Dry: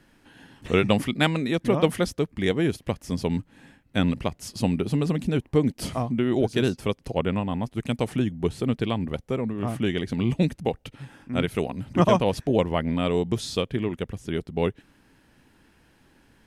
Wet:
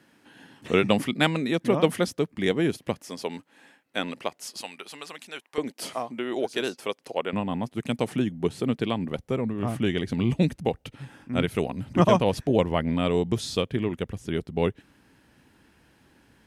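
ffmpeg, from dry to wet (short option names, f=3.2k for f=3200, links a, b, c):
-af "asetnsamples=n=441:p=0,asendcmd='3.03 highpass f 440;4.61 highpass f 1100;5.58 highpass f 450;7.33 highpass f 140;9.18 highpass f 50',highpass=150"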